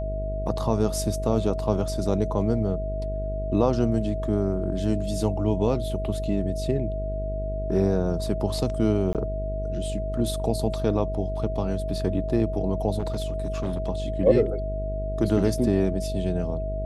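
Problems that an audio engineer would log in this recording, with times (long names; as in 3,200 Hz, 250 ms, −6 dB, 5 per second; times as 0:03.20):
mains buzz 50 Hz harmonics 14 −30 dBFS
whistle 640 Hz −31 dBFS
0:09.13–0:09.15: drop-out 18 ms
0:12.98–0:13.89: clipping −22.5 dBFS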